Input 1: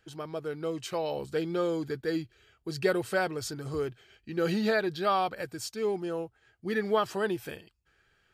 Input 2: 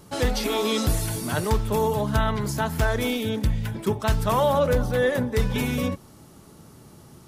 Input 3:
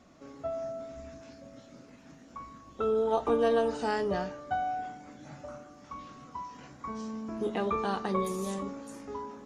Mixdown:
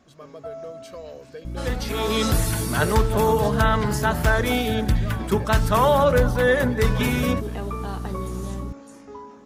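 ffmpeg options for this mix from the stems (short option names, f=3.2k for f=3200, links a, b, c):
-filter_complex "[0:a]aecho=1:1:1.8:1,acompressor=threshold=-25dB:ratio=6,volume=-9.5dB[a];[1:a]equalizer=f=1.5k:t=o:w=1:g=4.5,dynaudnorm=f=410:g=3:m=13dB,aeval=exprs='val(0)+0.0708*(sin(2*PI*60*n/s)+sin(2*PI*2*60*n/s)/2+sin(2*PI*3*60*n/s)/3+sin(2*PI*4*60*n/s)/4+sin(2*PI*5*60*n/s)/5)':c=same,adelay=1450,volume=-6.5dB[b];[2:a]acompressor=threshold=-34dB:ratio=1.5,volume=0dB[c];[a][b][c]amix=inputs=3:normalize=0"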